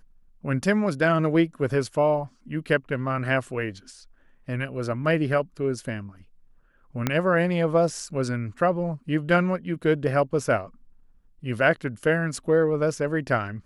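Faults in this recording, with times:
7.07 s: pop -8 dBFS

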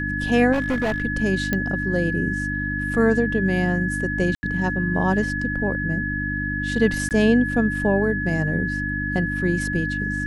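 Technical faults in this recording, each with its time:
hum 50 Hz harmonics 6 -28 dBFS
whine 1.7 kHz -26 dBFS
0.52–1.02 s: clipped -18.5 dBFS
1.53 s: pop -9 dBFS
4.35–4.43 s: dropout 80 ms
7.09–7.11 s: dropout 18 ms

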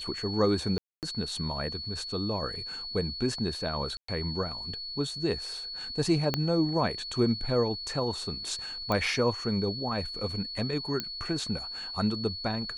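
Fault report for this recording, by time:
whine 4.4 kHz -36 dBFS
0.78–1.03 s: dropout 248 ms
3.97–4.08 s: dropout 114 ms
6.34 s: pop -12 dBFS
8.92 s: pop -16 dBFS
11.00 s: pop -15 dBFS

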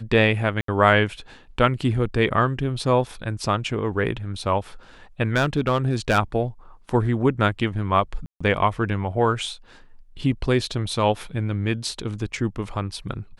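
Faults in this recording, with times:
0.61–0.68 s: dropout 73 ms
5.36–6.19 s: clipped -13.5 dBFS
8.26–8.40 s: dropout 145 ms

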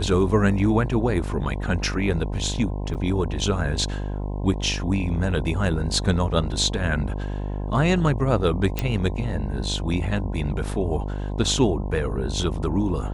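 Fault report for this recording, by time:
buzz 50 Hz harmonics 21 -28 dBFS
2.94–2.95 s: dropout 8.3 ms
8.79 s: pop

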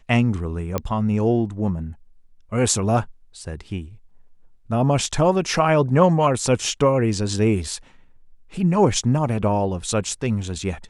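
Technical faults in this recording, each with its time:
0.78 s: pop -10 dBFS

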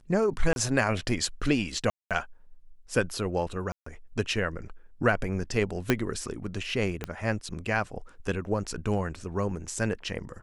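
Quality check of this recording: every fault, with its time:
0.53–0.56 s: dropout 31 ms
1.90–2.11 s: dropout 207 ms
3.72–3.86 s: dropout 144 ms
5.90 s: pop -8 dBFS
7.04 s: pop -17 dBFS

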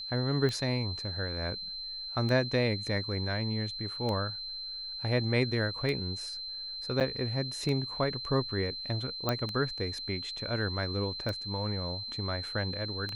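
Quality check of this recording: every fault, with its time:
tick 33 1/3 rpm -21 dBFS
whine 4.1 kHz -37 dBFS
7.00–7.01 s: dropout 8.3 ms
9.29 s: pop -14 dBFS

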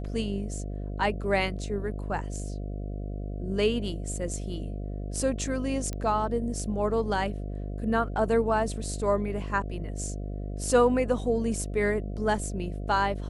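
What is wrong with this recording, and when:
buzz 50 Hz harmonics 14 -34 dBFS
5.93 s: pop -20 dBFS

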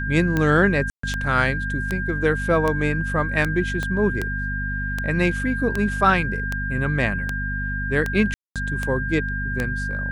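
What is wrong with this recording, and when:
hum 50 Hz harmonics 5 -28 dBFS
tick 78 rpm -10 dBFS
whine 1.6 kHz -27 dBFS
0.90–1.03 s: dropout 134 ms
3.83 s: pop -14 dBFS
8.34–8.56 s: dropout 217 ms

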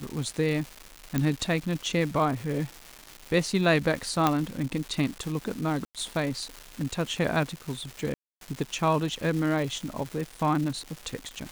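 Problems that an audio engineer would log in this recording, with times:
crackle 480 per s -33 dBFS
1.18 s: pop -12 dBFS
4.27 s: pop -8 dBFS
5.85–5.95 s: dropout 97 ms
8.14–8.41 s: dropout 272 ms

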